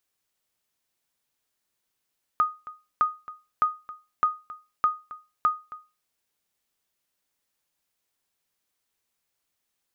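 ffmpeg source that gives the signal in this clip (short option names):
-f lavfi -i "aevalsrc='0.211*(sin(2*PI*1240*mod(t,0.61))*exp(-6.91*mod(t,0.61)/0.28)+0.126*sin(2*PI*1240*max(mod(t,0.61)-0.27,0))*exp(-6.91*max(mod(t,0.61)-0.27,0)/0.28))':d=3.66:s=44100"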